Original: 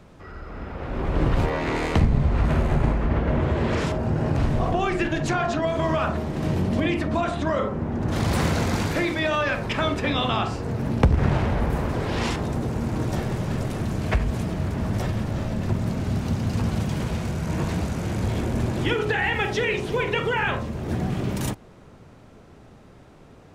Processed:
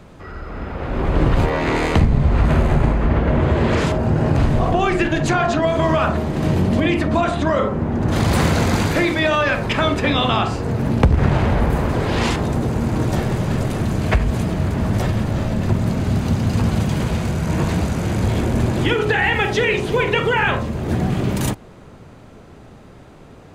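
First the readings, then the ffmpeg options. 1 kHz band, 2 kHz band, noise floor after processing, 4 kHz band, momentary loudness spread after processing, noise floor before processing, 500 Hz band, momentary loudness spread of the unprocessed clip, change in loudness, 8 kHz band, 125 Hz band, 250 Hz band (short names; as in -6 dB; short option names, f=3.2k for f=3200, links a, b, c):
+6.0 dB, +6.0 dB, -42 dBFS, +6.0 dB, 5 LU, -48 dBFS, +6.0 dB, 5 LU, +6.0 dB, +6.0 dB, +6.0 dB, +6.0 dB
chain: -filter_complex "[0:a]bandreject=f=5.5k:w=16,asplit=2[a][b];[b]alimiter=limit=-13dB:level=0:latency=1:release=210,volume=0.5dB[c];[a][c]amix=inputs=2:normalize=0"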